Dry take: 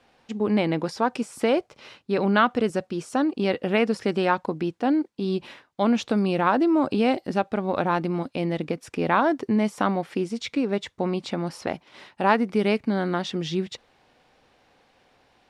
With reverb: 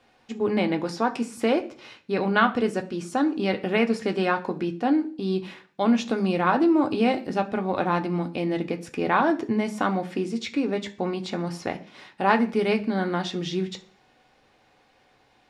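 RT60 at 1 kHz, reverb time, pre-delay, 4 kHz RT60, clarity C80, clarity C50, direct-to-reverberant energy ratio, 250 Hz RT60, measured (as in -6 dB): 0.40 s, 0.40 s, 3 ms, 0.55 s, 20.5 dB, 16.0 dB, 4.0 dB, 0.55 s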